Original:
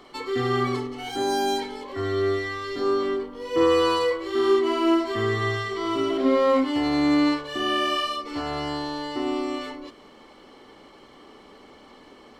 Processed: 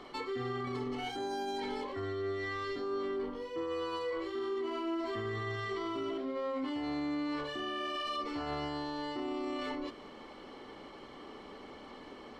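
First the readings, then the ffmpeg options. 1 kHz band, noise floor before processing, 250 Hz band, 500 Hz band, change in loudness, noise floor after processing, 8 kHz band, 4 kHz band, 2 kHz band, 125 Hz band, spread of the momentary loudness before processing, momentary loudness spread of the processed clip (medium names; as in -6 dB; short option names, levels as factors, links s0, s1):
-11.5 dB, -50 dBFS, -13.0 dB, -13.0 dB, -12.5 dB, -51 dBFS, under -15 dB, -12.5 dB, -11.0 dB, -11.0 dB, 10 LU, 14 LU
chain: -af "highshelf=f=7200:g=-11.5,areverse,acompressor=threshold=0.0282:ratio=12,areverse,alimiter=level_in=1.88:limit=0.0631:level=0:latency=1:release=12,volume=0.531"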